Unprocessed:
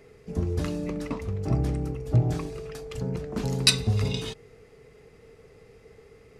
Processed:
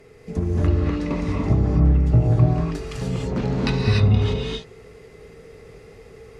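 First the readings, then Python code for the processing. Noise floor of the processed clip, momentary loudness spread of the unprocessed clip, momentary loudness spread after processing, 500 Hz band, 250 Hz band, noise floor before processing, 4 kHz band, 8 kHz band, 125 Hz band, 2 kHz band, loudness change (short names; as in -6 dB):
-47 dBFS, 15 LU, 10 LU, +6.0 dB, +8.0 dB, -54 dBFS, -5.5 dB, under -10 dB, +8.5 dB, +2.5 dB, +6.5 dB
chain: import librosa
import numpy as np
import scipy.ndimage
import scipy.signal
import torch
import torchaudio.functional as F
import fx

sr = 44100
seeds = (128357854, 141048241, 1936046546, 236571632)

y = fx.env_lowpass_down(x, sr, base_hz=1500.0, full_db=-21.5)
y = fx.rev_gated(y, sr, seeds[0], gate_ms=320, shape='rising', drr_db=-3.0)
y = fx.end_taper(y, sr, db_per_s=200.0)
y = y * librosa.db_to_amplitude(3.5)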